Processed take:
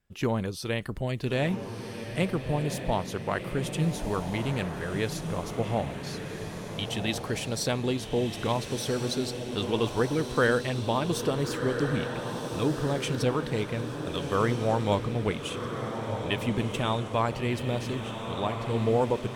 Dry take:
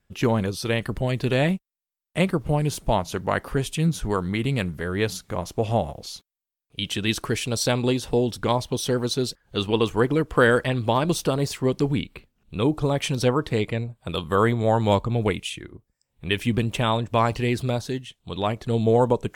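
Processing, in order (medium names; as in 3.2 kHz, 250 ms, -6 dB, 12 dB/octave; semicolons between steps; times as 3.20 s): echo that smears into a reverb 1398 ms, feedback 55%, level -6.5 dB; trim -6 dB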